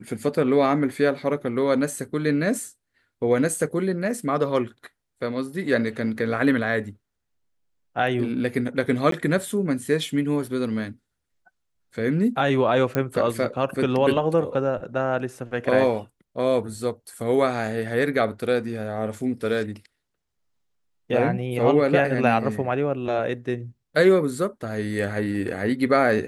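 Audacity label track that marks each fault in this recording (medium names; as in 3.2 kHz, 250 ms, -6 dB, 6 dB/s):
9.110000	9.120000	dropout 13 ms
12.950000	12.950000	pop -11 dBFS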